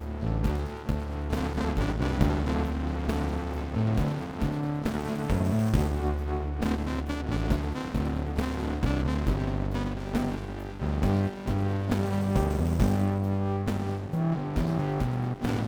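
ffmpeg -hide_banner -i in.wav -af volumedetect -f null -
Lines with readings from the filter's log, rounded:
mean_volume: -27.5 dB
max_volume: -8.7 dB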